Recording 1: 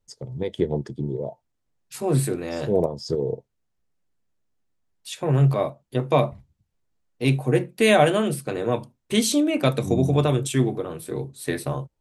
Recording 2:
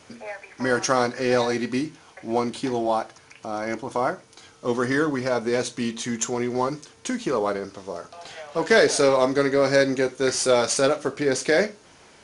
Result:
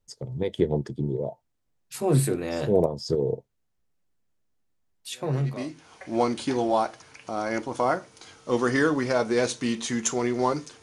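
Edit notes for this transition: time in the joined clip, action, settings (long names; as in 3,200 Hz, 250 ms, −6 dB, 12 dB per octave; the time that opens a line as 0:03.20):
recording 1
0:05.52: continue with recording 2 from 0:01.68, crossfade 0.94 s quadratic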